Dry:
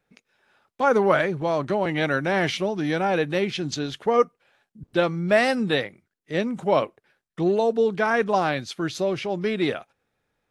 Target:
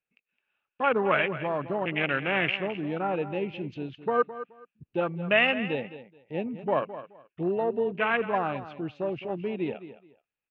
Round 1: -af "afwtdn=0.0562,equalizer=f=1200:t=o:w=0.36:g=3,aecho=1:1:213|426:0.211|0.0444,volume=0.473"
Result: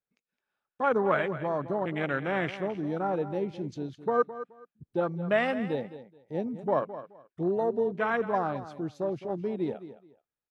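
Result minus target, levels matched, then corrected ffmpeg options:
2 kHz band -4.5 dB
-af "afwtdn=0.0562,lowpass=f=2700:t=q:w=7.6,equalizer=f=1200:t=o:w=0.36:g=3,aecho=1:1:213|426:0.211|0.0444,volume=0.473"

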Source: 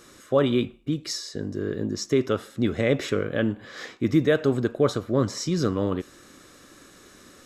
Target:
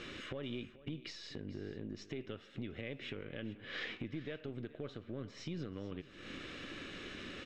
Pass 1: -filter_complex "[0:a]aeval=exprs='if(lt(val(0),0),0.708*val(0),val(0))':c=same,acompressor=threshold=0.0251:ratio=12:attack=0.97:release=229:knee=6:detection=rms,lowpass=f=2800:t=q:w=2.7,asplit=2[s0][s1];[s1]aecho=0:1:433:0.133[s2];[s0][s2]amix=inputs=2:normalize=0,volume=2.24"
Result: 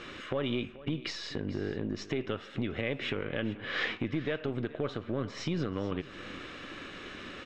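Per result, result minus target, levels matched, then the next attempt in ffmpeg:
compression: peak gain reduction -9 dB; 1 kHz band +2.5 dB
-filter_complex "[0:a]aeval=exprs='if(lt(val(0),0),0.708*val(0),val(0))':c=same,acompressor=threshold=0.00794:ratio=12:attack=0.97:release=229:knee=6:detection=rms,lowpass=f=2800:t=q:w=2.7,asplit=2[s0][s1];[s1]aecho=0:1:433:0.133[s2];[s0][s2]amix=inputs=2:normalize=0,volume=2.24"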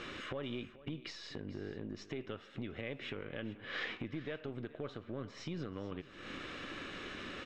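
1 kHz band +4.5 dB
-filter_complex "[0:a]aeval=exprs='if(lt(val(0),0),0.708*val(0),val(0))':c=same,acompressor=threshold=0.00794:ratio=12:attack=0.97:release=229:knee=6:detection=rms,lowpass=f=2800:t=q:w=2.7,equalizer=f=990:w=0.96:g=-7,asplit=2[s0][s1];[s1]aecho=0:1:433:0.133[s2];[s0][s2]amix=inputs=2:normalize=0,volume=2.24"

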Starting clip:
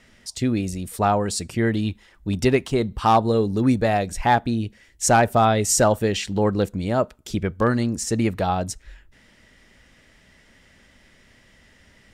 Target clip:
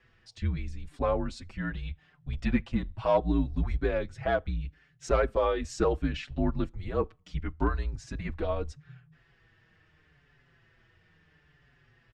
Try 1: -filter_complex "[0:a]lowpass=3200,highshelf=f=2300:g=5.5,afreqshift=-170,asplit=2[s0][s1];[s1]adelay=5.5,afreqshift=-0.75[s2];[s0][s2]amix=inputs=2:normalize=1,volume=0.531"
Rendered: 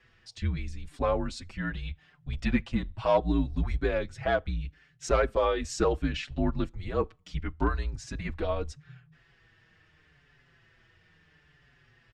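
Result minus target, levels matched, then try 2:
4 kHz band +3.5 dB
-filter_complex "[0:a]lowpass=3200,afreqshift=-170,asplit=2[s0][s1];[s1]adelay=5.5,afreqshift=-0.75[s2];[s0][s2]amix=inputs=2:normalize=1,volume=0.531"

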